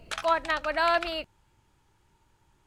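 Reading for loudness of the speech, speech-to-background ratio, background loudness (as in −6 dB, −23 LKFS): −27.0 LKFS, 12.5 dB, −39.5 LKFS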